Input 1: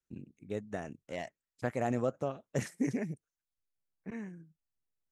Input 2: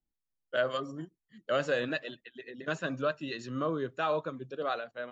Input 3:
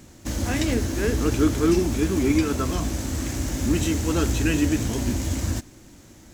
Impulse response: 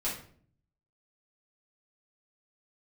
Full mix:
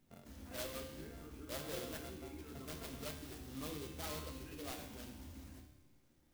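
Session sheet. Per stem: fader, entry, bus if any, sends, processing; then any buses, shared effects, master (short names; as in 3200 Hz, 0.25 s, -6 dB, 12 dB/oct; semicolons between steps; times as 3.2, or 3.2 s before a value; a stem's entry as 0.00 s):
-0.5 dB, 0.00 s, no send, sample sorter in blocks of 64 samples; auto duck -11 dB, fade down 0.35 s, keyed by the second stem
-5.0 dB, 0.00 s, send -10 dB, notch 560 Hz, Q 12; noise-modulated delay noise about 4200 Hz, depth 0.17 ms
-18.0 dB, 0.00 s, send -4.5 dB, limiter -19 dBFS, peak gain reduction 10 dB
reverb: on, RT60 0.55 s, pre-delay 4 ms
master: resonator 75 Hz, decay 1.2 s, harmonics all, mix 80%; clock jitter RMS 0.036 ms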